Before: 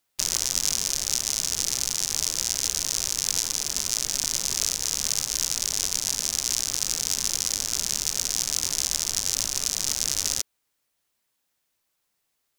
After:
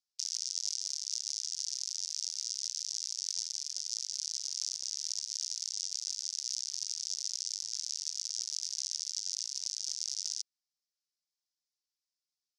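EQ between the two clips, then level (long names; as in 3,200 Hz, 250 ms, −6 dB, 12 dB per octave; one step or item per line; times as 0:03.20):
four-pole ladder band-pass 5,800 Hz, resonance 55%
high-frequency loss of the air 63 metres
0.0 dB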